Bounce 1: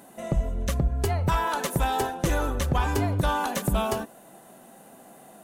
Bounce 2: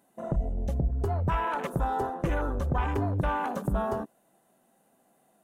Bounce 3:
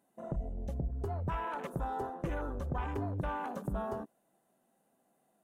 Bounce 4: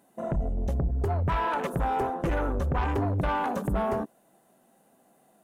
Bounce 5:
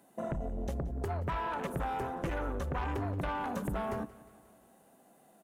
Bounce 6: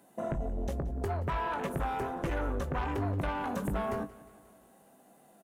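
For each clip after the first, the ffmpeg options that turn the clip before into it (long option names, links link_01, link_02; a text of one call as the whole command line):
ffmpeg -i in.wav -filter_complex "[0:a]afwtdn=0.0282,asplit=2[link_01][link_02];[link_02]alimiter=level_in=1.5dB:limit=-24dB:level=0:latency=1:release=30,volume=-1.5dB,volume=-2dB[link_03];[link_01][link_03]amix=inputs=2:normalize=0,volume=-5.5dB" out.wav
ffmpeg -i in.wav -af "equalizer=frequency=320:width=0.4:gain=2,volume=-9dB" out.wav
ffmpeg -i in.wav -af "aeval=exprs='0.0531*sin(PI/2*1.58*val(0)/0.0531)':channel_layout=same,volume=3.5dB" out.wav
ffmpeg -i in.wav -filter_complex "[0:a]acrossover=split=200|1300[link_01][link_02][link_03];[link_01]acompressor=threshold=-37dB:ratio=4[link_04];[link_02]acompressor=threshold=-37dB:ratio=4[link_05];[link_03]acompressor=threshold=-43dB:ratio=4[link_06];[link_04][link_05][link_06]amix=inputs=3:normalize=0,aecho=1:1:178|356|534|712|890:0.106|0.0604|0.0344|0.0196|0.0112" out.wav
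ffmpeg -i in.wav -filter_complex "[0:a]asplit=2[link_01][link_02];[link_02]adelay=20,volume=-10.5dB[link_03];[link_01][link_03]amix=inputs=2:normalize=0,volume=1.5dB" out.wav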